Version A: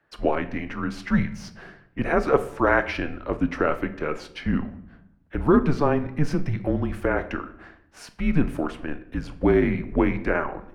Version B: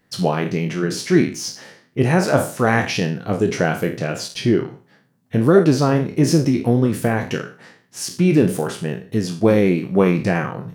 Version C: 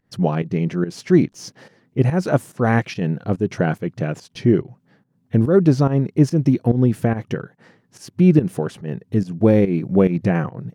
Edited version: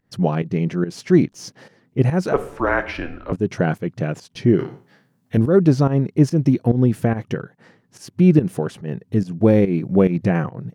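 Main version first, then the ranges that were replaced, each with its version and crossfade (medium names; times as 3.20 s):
C
2.33–3.32 s: from A
4.59–5.37 s: from B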